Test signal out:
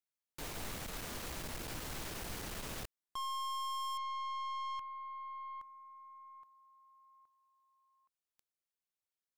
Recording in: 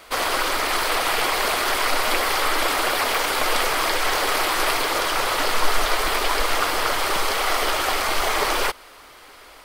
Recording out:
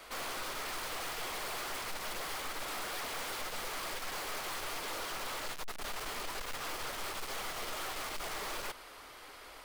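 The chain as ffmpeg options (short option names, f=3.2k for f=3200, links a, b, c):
-af "aeval=exprs='(tanh(50.1*val(0)+0.35)-tanh(0.35))/50.1':c=same,volume=-4.5dB"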